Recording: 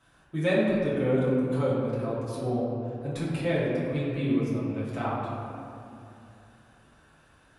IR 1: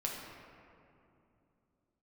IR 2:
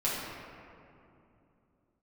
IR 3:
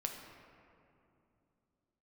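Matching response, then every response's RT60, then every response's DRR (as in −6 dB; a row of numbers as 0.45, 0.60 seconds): 2; 2.8, 2.7, 2.8 seconds; −3.0, −10.0, 1.5 decibels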